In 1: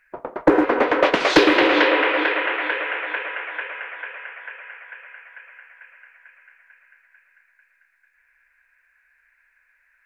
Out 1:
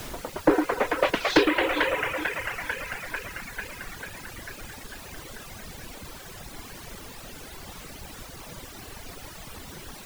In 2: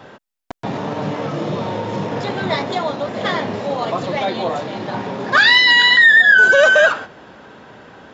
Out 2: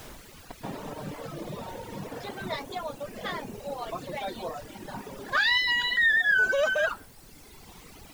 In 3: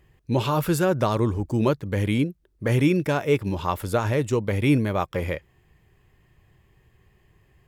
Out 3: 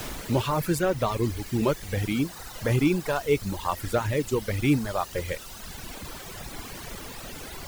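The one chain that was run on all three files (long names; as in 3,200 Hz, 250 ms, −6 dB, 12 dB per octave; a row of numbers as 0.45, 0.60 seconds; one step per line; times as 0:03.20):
background noise pink −33 dBFS
reverb reduction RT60 2 s
loudness normalisation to −27 LKFS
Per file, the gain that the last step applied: −4.5, −12.0, −1.5 decibels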